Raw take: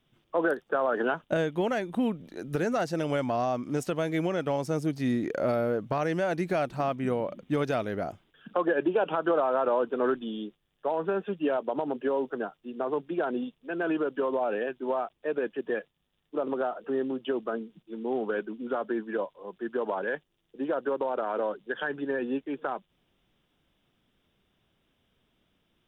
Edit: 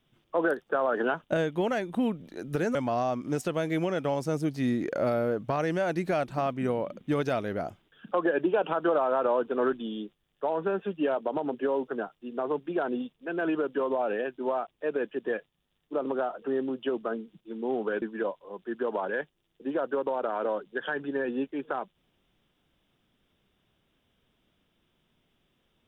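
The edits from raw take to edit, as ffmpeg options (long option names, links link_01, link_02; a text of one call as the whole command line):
ffmpeg -i in.wav -filter_complex "[0:a]asplit=3[link_01][link_02][link_03];[link_01]atrim=end=2.752[link_04];[link_02]atrim=start=3.168:end=18.442[link_05];[link_03]atrim=start=18.958[link_06];[link_04][link_05]acrossfade=duration=0.004:curve1=hsin:curve2=hsin[link_07];[link_07][link_06]acrossfade=duration=0.004:curve1=hsin:curve2=hsin" out.wav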